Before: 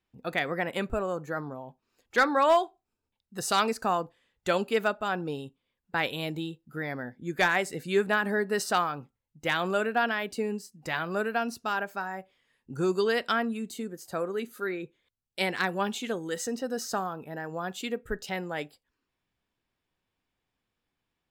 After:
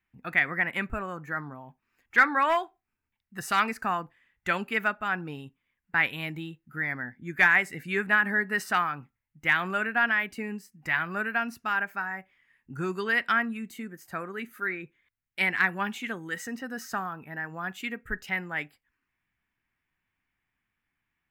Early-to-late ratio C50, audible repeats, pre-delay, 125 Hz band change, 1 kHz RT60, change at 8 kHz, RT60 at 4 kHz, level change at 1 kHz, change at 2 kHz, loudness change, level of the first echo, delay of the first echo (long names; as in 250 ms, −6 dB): no reverb audible, no echo audible, no reverb audible, −1.0 dB, no reverb audible, −6.5 dB, no reverb audible, 0.0 dB, +6.0 dB, +2.0 dB, no echo audible, no echo audible